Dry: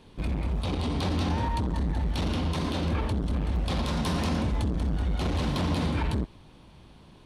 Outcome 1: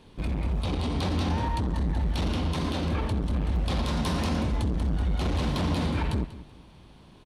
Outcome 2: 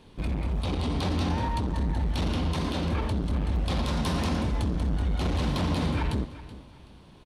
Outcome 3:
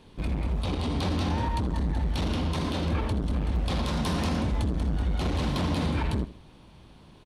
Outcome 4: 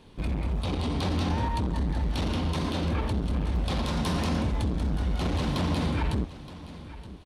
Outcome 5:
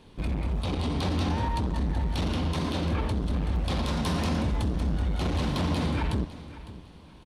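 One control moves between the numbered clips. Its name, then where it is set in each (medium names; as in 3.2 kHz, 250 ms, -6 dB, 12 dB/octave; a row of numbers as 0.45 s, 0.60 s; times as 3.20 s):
feedback delay, time: 190 ms, 377 ms, 78 ms, 921 ms, 555 ms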